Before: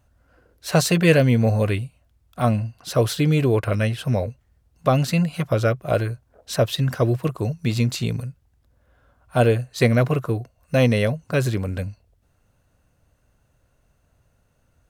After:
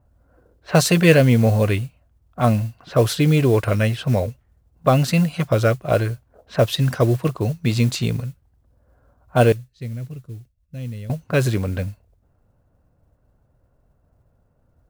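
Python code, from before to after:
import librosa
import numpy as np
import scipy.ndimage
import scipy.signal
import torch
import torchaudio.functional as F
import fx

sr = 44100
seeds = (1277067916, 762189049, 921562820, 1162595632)

y = fx.env_lowpass(x, sr, base_hz=980.0, full_db=-18.0)
y = fx.tone_stack(y, sr, knobs='10-0-1', at=(9.52, 11.1))
y = fx.mod_noise(y, sr, seeds[0], snr_db=27)
y = y * librosa.db_to_amplitude(2.5)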